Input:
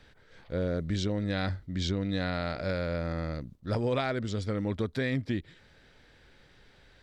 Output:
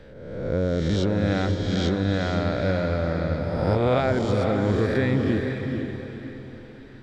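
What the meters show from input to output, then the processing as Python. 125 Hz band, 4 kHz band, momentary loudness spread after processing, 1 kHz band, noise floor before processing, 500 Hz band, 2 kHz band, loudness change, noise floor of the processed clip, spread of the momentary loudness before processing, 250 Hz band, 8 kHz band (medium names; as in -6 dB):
+8.5 dB, +4.0 dB, 14 LU, +8.5 dB, -60 dBFS, +9.5 dB, +6.5 dB, +8.0 dB, -43 dBFS, 5 LU, +8.5 dB, no reading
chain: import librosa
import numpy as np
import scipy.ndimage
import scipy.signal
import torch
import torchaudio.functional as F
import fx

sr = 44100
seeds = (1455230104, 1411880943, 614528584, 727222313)

y = fx.spec_swells(x, sr, rise_s=1.21)
y = fx.high_shelf(y, sr, hz=2200.0, db=-10.5)
y = fx.echo_diffused(y, sr, ms=471, feedback_pct=42, wet_db=-5.0)
y = y * librosa.db_to_amplitude(6.0)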